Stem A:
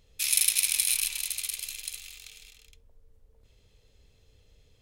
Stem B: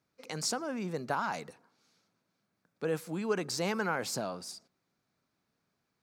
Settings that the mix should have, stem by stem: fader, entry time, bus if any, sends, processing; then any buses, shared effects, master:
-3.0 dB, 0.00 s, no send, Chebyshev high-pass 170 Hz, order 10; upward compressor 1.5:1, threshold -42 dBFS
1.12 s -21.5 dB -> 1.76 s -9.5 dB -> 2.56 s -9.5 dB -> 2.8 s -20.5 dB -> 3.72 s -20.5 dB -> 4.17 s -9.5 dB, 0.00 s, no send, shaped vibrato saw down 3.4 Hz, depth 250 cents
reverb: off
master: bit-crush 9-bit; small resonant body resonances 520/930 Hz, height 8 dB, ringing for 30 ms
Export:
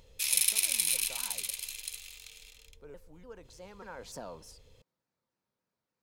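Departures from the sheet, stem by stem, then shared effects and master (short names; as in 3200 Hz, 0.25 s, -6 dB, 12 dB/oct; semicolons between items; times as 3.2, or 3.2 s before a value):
stem A: missing Chebyshev high-pass 170 Hz, order 10; master: missing bit-crush 9-bit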